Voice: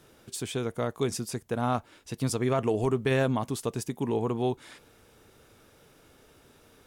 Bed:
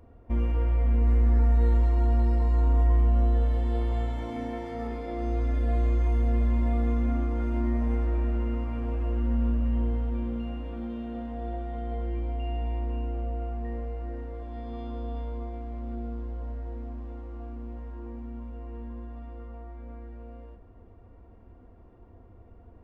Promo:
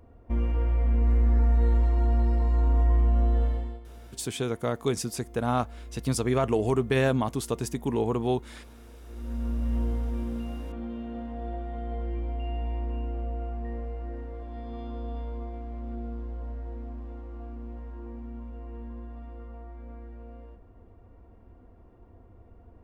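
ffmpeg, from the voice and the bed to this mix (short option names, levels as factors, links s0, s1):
-filter_complex "[0:a]adelay=3850,volume=1.19[s0];[1:a]volume=7.5,afade=t=out:st=3.45:d=0.35:silence=0.11885,afade=t=in:st=9.06:d=0.69:silence=0.125893[s1];[s0][s1]amix=inputs=2:normalize=0"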